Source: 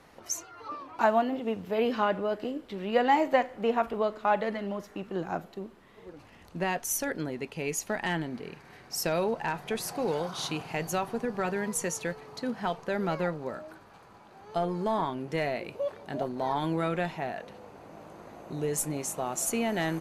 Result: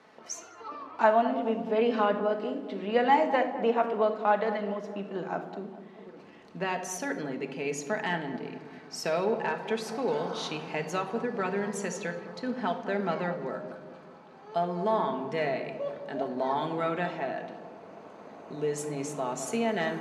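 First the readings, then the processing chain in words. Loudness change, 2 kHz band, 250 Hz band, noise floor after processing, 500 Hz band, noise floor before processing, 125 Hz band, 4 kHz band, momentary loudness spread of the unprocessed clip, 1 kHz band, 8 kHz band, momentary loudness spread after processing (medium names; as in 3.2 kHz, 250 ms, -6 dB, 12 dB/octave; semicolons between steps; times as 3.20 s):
+0.5 dB, +0.5 dB, 0.0 dB, -51 dBFS, +1.5 dB, -54 dBFS, -2.5 dB, -1.5 dB, 14 LU, +1.0 dB, -6.5 dB, 17 LU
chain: Bessel high-pass 240 Hz, order 2; distance through air 84 m; on a send: filtered feedback delay 210 ms, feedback 62%, low-pass 830 Hz, level -9.5 dB; on the sum: simulated room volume 2400 m³, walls furnished, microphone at 1.5 m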